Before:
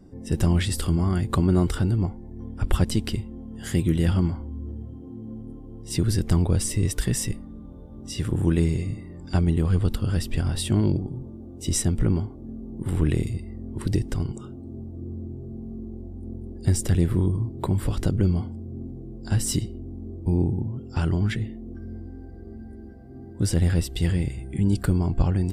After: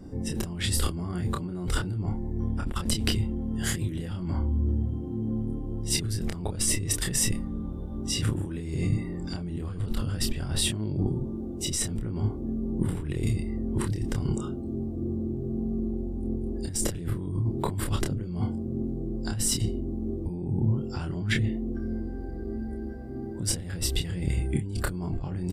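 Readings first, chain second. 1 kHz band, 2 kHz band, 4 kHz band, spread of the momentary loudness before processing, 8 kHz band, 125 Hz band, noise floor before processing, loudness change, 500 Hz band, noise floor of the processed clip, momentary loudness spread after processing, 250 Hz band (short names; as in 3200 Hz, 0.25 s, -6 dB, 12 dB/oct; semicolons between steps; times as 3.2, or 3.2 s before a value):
-3.0 dB, +0.5 dB, +3.0 dB, 16 LU, +2.5 dB, -5.5 dB, -41 dBFS, -5.0 dB, -3.5 dB, -35 dBFS, 7 LU, -3.5 dB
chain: negative-ratio compressor -29 dBFS, ratio -1; doubler 28 ms -5 dB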